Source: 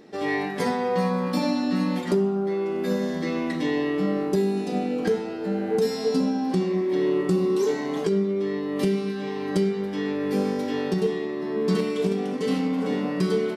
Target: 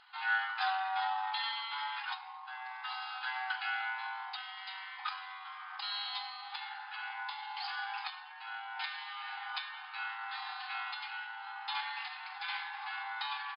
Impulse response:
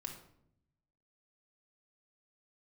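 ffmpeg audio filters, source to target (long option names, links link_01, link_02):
-af "afftfilt=real='re*between(b*sr/4096,940,6700)':imag='im*between(b*sr/4096,940,6700)':win_size=4096:overlap=0.75,asetrate=34006,aresample=44100,atempo=1.29684"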